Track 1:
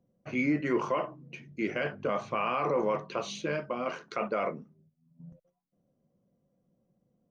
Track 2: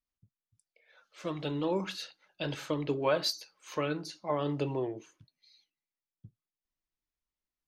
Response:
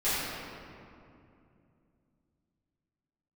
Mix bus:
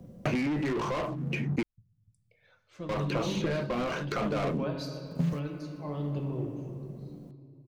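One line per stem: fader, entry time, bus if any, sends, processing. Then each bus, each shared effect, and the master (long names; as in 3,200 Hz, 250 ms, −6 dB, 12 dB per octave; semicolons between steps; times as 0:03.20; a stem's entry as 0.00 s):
−5.0 dB, 0.00 s, muted 0:01.63–0:02.89, no send, brickwall limiter −23.5 dBFS, peak gain reduction 6.5 dB; leveller curve on the samples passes 3; multiband upward and downward compressor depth 100%
−3.0 dB, 1.55 s, send −22.5 dB, low-shelf EQ 230 Hz +10 dB; automatic ducking −11 dB, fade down 0.40 s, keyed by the first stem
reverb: on, RT60 2.6 s, pre-delay 4 ms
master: low-shelf EQ 260 Hz +8.5 dB; highs frequency-modulated by the lows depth 0.14 ms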